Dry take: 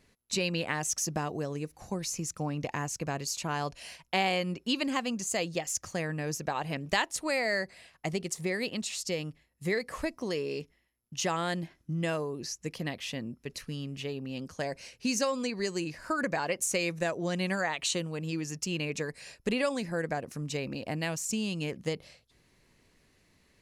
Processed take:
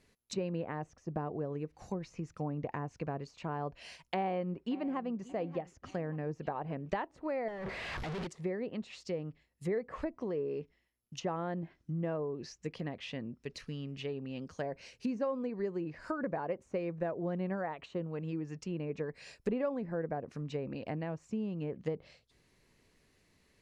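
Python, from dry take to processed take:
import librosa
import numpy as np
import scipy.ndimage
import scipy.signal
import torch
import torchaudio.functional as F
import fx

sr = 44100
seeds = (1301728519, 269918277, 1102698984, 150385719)

y = fx.echo_throw(x, sr, start_s=3.9, length_s=1.13, ms=580, feedback_pct=50, wet_db=-17.5)
y = fx.clip_1bit(y, sr, at=(7.48, 8.27))
y = fx.env_lowpass_down(y, sr, base_hz=1000.0, full_db=-29.0)
y = fx.peak_eq(y, sr, hz=430.0, db=2.5, octaves=0.32)
y = y * 10.0 ** (-3.5 / 20.0)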